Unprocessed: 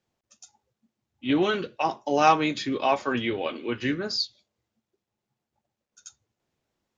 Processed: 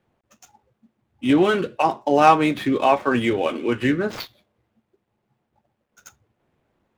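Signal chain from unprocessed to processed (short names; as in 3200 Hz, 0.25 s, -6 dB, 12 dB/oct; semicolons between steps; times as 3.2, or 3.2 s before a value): median filter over 9 samples; high shelf 4300 Hz -7.5 dB; in parallel at +2.5 dB: compressor, threshold -36 dBFS, peak gain reduction 20.5 dB; on the sum: gain +4.5 dB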